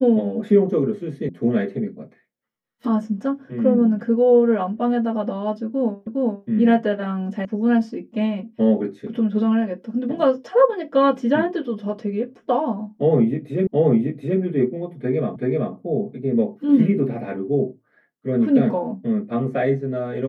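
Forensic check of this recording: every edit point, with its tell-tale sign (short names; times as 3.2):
1.29 sound cut off
6.07 repeat of the last 0.41 s
7.45 sound cut off
13.67 repeat of the last 0.73 s
15.36 repeat of the last 0.38 s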